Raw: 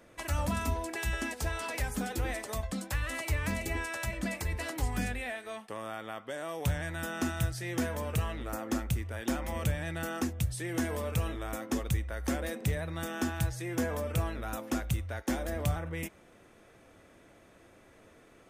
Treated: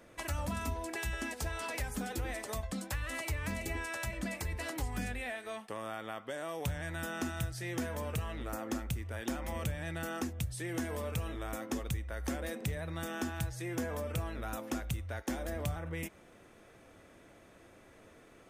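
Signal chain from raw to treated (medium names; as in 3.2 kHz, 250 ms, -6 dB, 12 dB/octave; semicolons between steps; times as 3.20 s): compression 2:1, threshold -36 dBFS, peak gain reduction 7 dB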